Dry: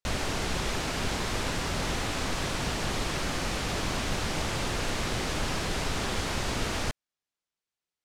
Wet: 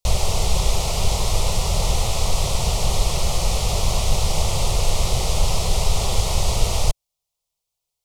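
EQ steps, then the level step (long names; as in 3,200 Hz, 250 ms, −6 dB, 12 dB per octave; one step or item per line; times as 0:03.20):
low-shelf EQ 99 Hz +9.5 dB
high-shelf EQ 6,700 Hz +6 dB
phaser with its sweep stopped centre 670 Hz, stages 4
+8.0 dB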